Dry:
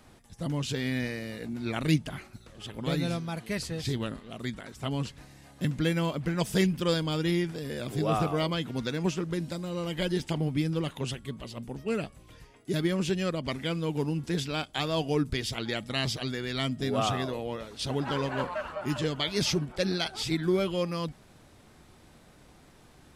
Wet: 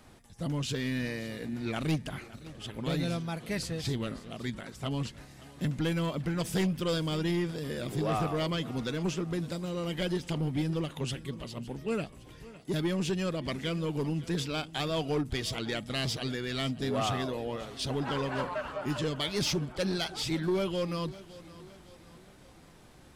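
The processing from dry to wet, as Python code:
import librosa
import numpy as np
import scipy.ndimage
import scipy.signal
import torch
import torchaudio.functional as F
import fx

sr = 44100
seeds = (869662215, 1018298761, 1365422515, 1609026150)

p1 = 10.0 ** (-23.0 / 20.0) * np.tanh(x / 10.0 ** (-23.0 / 20.0))
p2 = p1 + fx.echo_feedback(p1, sr, ms=561, feedback_pct=47, wet_db=-18.5, dry=0)
y = fx.end_taper(p2, sr, db_per_s=250.0)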